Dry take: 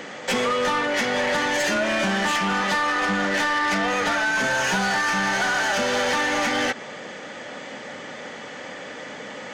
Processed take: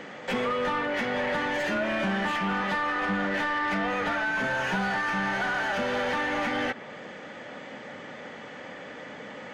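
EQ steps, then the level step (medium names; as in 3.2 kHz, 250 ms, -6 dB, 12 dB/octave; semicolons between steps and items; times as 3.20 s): tone controls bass +3 dB, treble -9 dB; dynamic bell 6.6 kHz, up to -5 dB, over -47 dBFS, Q 0.94; -5.0 dB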